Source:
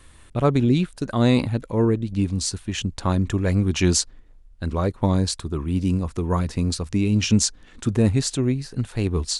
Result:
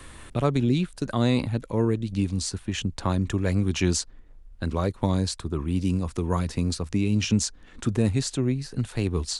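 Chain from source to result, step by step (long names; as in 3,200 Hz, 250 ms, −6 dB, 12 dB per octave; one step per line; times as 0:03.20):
multiband upward and downward compressor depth 40%
level −3.5 dB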